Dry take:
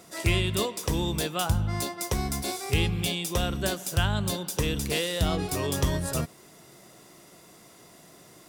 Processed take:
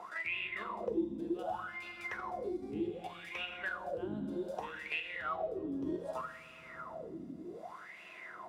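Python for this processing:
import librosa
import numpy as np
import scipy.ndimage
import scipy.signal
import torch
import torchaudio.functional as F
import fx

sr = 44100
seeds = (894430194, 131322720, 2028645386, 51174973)

y = fx.level_steps(x, sr, step_db=9)
y = fx.peak_eq(y, sr, hz=6200.0, db=-6.5, octaves=2.5)
y = fx.rev_fdn(y, sr, rt60_s=2.7, lf_ratio=1.35, hf_ratio=0.55, size_ms=28.0, drr_db=1.5)
y = fx.wah_lfo(y, sr, hz=0.65, low_hz=270.0, high_hz=2600.0, q=10.0)
y = fx.band_squash(y, sr, depth_pct=70)
y = F.gain(torch.from_numpy(y), 7.5).numpy()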